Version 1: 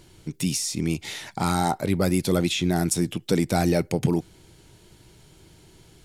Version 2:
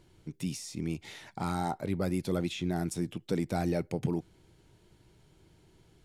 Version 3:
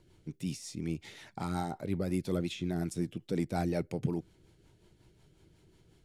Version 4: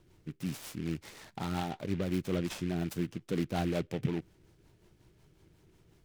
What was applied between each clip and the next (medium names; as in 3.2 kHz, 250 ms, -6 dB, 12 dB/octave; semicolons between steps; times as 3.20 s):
treble shelf 3.2 kHz -8 dB; trim -8.5 dB
rotary cabinet horn 5.5 Hz
delay time shaken by noise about 2.1 kHz, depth 0.062 ms